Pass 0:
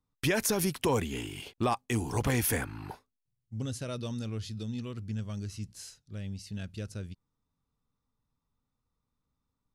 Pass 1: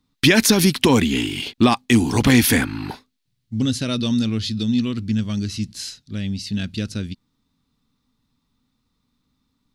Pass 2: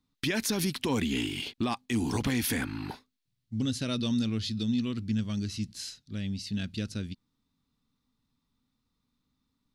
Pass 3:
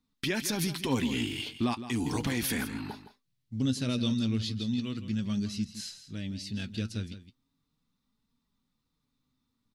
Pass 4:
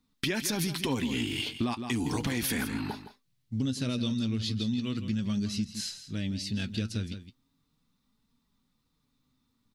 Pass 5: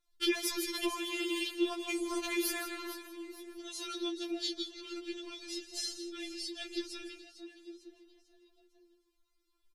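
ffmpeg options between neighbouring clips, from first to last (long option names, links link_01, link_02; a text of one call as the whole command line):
ffmpeg -i in.wav -af "equalizer=frequency=250:width_type=o:width=1:gain=11,equalizer=frequency=500:width_type=o:width=1:gain=-3,equalizer=frequency=2000:width_type=o:width=1:gain=4,equalizer=frequency=4000:width_type=o:width=1:gain=11,volume=8.5dB" out.wav
ffmpeg -i in.wav -af "alimiter=limit=-12dB:level=0:latency=1:release=115,volume=-8dB" out.wav
ffmpeg -i in.wav -af "flanger=delay=4.2:depth=5.1:regen=51:speed=0.36:shape=triangular,aecho=1:1:164:0.237,volume=3dB" out.wav
ffmpeg -i in.wav -af "acompressor=threshold=-31dB:ratio=6,volume=4.5dB" out.wav
ffmpeg -i in.wav -filter_complex "[0:a]asplit=5[link_01][link_02][link_03][link_04][link_05];[link_02]adelay=450,afreqshift=64,volume=-14.5dB[link_06];[link_03]adelay=900,afreqshift=128,volume=-21.2dB[link_07];[link_04]adelay=1350,afreqshift=192,volume=-28dB[link_08];[link_05]adelay=1800,afreqshift=256,volume=-34.7dB[link_09];[link_01][link_06][link_07][link_08][link_09]amix=inputs=5:normalize=0,aresample=32000,aresample=44100,afftfilt=real='re*4*eq(mod(b,16),0)':imag='im*4*eq(mod(b,16),0)':win_size=2048:overlap=0.75" out.wav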